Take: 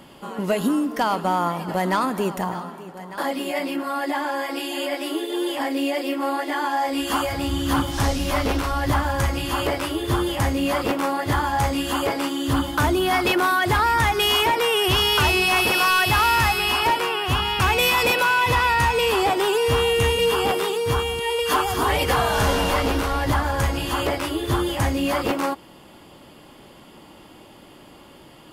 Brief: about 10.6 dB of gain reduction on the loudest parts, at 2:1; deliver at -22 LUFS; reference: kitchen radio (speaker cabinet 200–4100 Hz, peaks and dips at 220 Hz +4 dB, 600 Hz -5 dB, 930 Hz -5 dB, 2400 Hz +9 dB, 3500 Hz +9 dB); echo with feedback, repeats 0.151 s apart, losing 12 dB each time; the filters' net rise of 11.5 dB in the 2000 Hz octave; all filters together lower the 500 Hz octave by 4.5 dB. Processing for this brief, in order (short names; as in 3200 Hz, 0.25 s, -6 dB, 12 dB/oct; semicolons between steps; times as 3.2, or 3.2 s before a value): bell 500 Hz -4 dB; bell 2000 Hz +9 dB; compressor 2:1, threshold -32 dBFS; speaker cabinet 200–4100 Hz, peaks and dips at 220 Hz +4 dB, 600 Hz -5 dB, 930 Hz -5 dB, 2400 Hz +9 dB, 3500 Hz +9 dB; feedback echo 0.151 s, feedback 25%, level -12 dB; gain +1 dB